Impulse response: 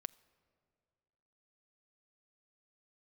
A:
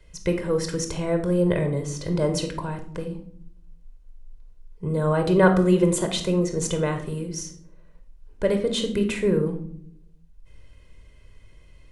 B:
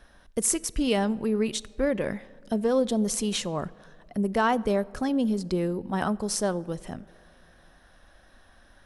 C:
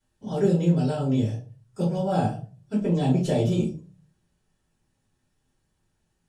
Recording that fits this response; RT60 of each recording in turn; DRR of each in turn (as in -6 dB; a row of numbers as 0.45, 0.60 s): B; 0.65 s, not exponential, 0.40 s; 6.0, 19.5, -8.5 dB